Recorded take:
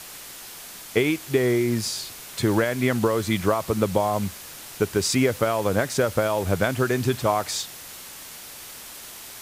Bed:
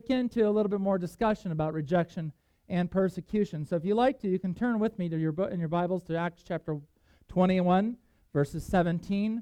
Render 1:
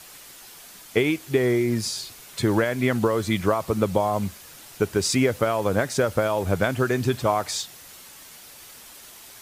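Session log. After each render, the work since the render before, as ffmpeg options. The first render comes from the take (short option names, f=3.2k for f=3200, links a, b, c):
-af "afftdn=nr=6:nf=-41"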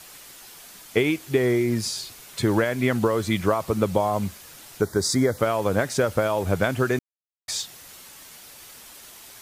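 -filter_complex "[0:a]asettb=1/sr,asplit=3[a][b][c];[a]atrim=end=4.814[d];[b]atrim=start=4.81:end=5.38,asetpts=PTS-STARTPTS,afade=t=in:d=0.004:c=qsin,afade=t=out:st=0.566:d=0.004:c=qsin,asuperstop=centerf=2700:order=4:qfactor=1.6[e];[c]atrim=start=5.376[f];[d][e]acrossfade=d=0.004:c1=hsin:c2=qsin[g];[g][f]acrossfade=d=0.004:c1=qsin:c2=hsin,asplit=3[h][i][j];[h]atrim=end=6.99,asetpts=PTS-STARTPTS,afade=t=out:st=6.986:d=0.004:c=hsin[k];[i]atrim=start=6.99:end=7.48,asetpts=PTS-STARTPTS,volume=0[l];[j]atrim=start=7.48,asetpts=PTS-STARTPTS,afade=t=in:d=0.004:c=hsin[m];[k][l][m]concat=n=3:v=0:a=1"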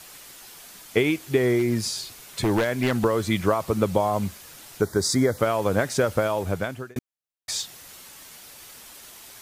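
-filter_complex "[0:a]asettb=1/sr,asplit=3[a][b][c];[a]atrim=end=1.594[d];[b]atrim=start=1.59:end=3.05,asetpts=PTS-STARTPTS,afade=t=in:d=0.004:c=qsin,afade=t=out:st=1.456:d=0.004:c=qsin,aeval=exprs='0.188*(abs(mod(val(0)/0.188+3,4)-2)-1)':c=same[e];[c]atrim=start=3.046[f];[d][e]acrossfade=d=0.004:c1=hsin:c2=qsin[g];[g][f]acrossfade=d=0.004:c1=qsin:c2=hsin,asplit=2[h][i];[h]atrim=end=6.96,asetpts=PTS-STARTPTS,afade=t=out:st=6.02:d=0.94:c=qsin[j];[i]atrim=start=6.96,asetpts=PTS-STARTPTS,afade=t=in:d=0.004:c=hsin[k];[j][k]concat=n=2:v=0:a=1"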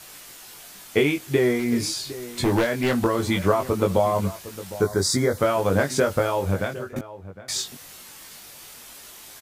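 -filter_complex "[0:a]asplit=2[a][b];[b]adelay=21,volume=-4dB[c];[a][c]amix=inputs=2:normalize=0,asplit=2[d][e];[e]adelay=758,volume=-15dB,highshelf=f=4k:g=-17.1[f];[d][f]amix=inputs=2:normalize=0"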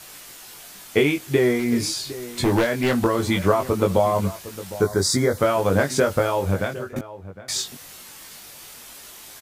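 -af "volume=1.5dB"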